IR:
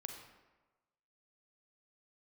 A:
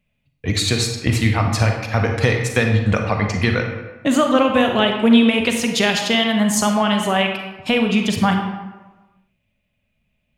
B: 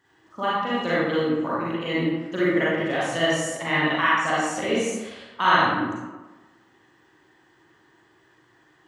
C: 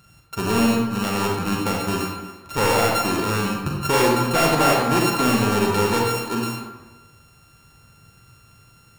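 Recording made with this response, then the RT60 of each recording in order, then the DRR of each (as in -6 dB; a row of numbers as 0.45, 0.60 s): A; 1.2, 1.2, 1.2 s; 3.0, -9.0, -2.0 dB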